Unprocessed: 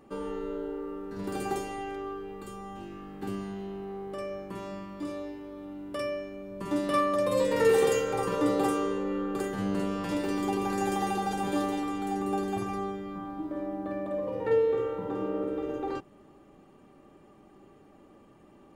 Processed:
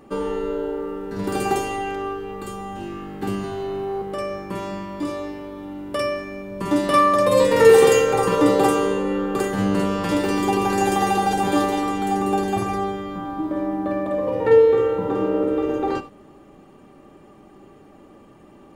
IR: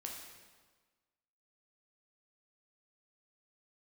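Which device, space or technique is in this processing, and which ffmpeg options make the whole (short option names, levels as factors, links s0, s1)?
keyed gated reverb: -filter_complex "[0:a]asettb=1/sr,asplit=3[s0][s1][s2];[s0]atrim=end=3.434[s3];[s1]atrim=start=3.43:end=4.02,asetpts=PTS-STARTPTS,afade=t=in:d=0.004:c=qsin,afade=t=out:st=0.586:d=0.004:c=qsin,aecho=1:1:7.4:0.83,atrim=end_sample=26019[s4];[s2]atrim=start=4.016[s5];[s3][s4]acrossfade=d=0.004:c1=hsin:c2=qsin[s6];[s6][s5]acrossfade=d=0.004:c1=qsin:c2=hsin,asplit=3[s7][s8][s9];[1:a]atrim=start_sample=2205[s10];[s8][s10]afir=irnorm=-1:irlink=0[s11];[s9]apad=whole_len=826957[s12];[s11][s12]sidechaingate=range=0.0224:threshold=0.00631:ratio=16:detection=peak,volume=0.562[s13];[s7][s13]amix=inputs=2:normalize=0,volume=2.51"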